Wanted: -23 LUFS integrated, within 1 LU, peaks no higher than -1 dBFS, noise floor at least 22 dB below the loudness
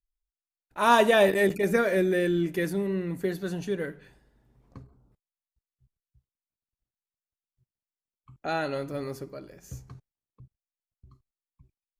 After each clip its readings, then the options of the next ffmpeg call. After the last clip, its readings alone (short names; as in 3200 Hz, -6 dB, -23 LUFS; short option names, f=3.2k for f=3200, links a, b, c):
loudness -25.5 LUFS; peak -6.5 dBFS; loudness target -23.0 LUFS
-> -af "volume=2.5dB"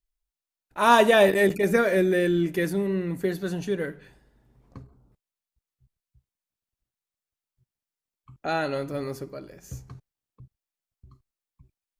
loudness -23.0 LUFS; peak -4.0 dBFS; noise floor -92 dBFS